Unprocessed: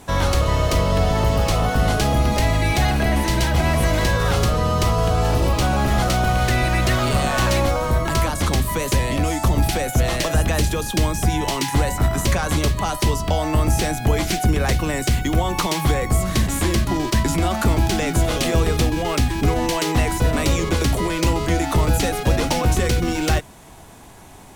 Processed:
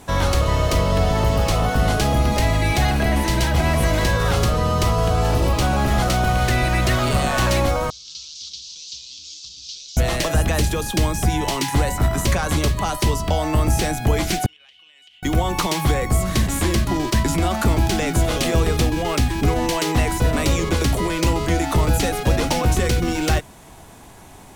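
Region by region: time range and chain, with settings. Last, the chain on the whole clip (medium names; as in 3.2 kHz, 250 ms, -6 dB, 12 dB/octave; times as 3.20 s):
7.90–9.97 s: one-bit delta coder 32 kbps, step -24.5 dBFS + inverse Chebyshev high-pass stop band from 2 kHz
14.46–15.23 s: band-pass filter 3 kHz, Q 13 + compression 8:1, threshold -46 dBFS
whole clip: none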